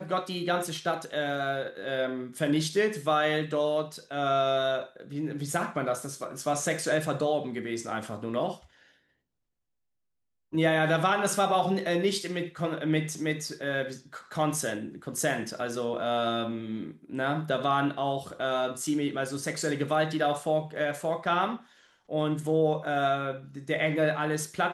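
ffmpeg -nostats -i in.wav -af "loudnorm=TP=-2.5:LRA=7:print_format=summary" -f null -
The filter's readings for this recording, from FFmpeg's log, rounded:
Input Integrated:    -29.0 LUFS
Input True Peak:     -11.8 dBTP
Input LRA:             3.7 LU
Input Threshold:     -39.2 LUFS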